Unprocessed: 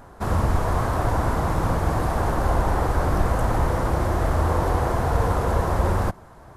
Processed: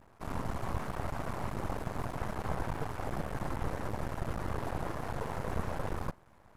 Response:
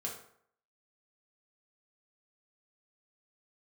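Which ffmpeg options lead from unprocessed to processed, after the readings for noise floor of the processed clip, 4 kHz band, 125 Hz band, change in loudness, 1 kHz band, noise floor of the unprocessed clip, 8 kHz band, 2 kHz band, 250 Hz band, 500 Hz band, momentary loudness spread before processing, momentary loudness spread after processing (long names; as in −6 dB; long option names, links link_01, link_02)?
−60 dBFS, −11.5 dB, −16.0 dB, −15.0 dB, −14.5 dB, −46 dBFS, −13.5 dB, −12.0 dB, −12.5 dB, −14.5 dB, 1 LU, 2 LU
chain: -af "afftfilt=real='hypot(re,im)*cos(2*PI*random(0))':imag='hypot(re,im)*sin(2*PI*random(1))':win_size=512:overlap=0.75,aeval=exprs='max(val(0),0)':channel_layout=same,volume=-4.5dB"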